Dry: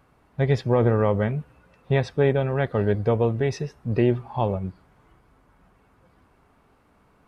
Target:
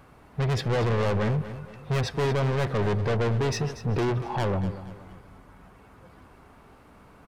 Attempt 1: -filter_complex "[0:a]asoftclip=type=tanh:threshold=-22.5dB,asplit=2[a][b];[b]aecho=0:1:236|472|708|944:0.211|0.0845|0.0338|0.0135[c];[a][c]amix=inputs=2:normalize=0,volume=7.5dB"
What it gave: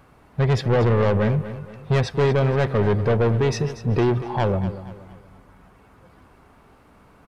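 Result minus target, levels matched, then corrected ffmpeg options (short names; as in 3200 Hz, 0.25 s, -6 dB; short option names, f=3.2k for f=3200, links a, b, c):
soft clip: distortion -4 dB
-filter_complex "[0:a]asoftclip=type=tanh:threshold=-30.5dB,asplit=2[a][b];[b]aecho=0:1:236|472|708|944:0.211|0.0845|0.0338|0.0135[c];[a][c]amix=inputs=2:normalize=0,volume=7.5dB"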